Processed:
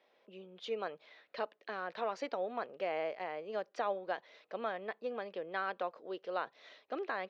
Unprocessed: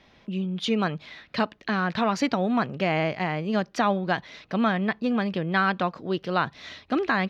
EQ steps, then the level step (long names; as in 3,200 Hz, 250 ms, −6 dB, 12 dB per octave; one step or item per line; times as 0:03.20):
resonant band-pass 490 Hz, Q 2.6
high-frequency loss of the air 56 metres
first difference
+16.5 dB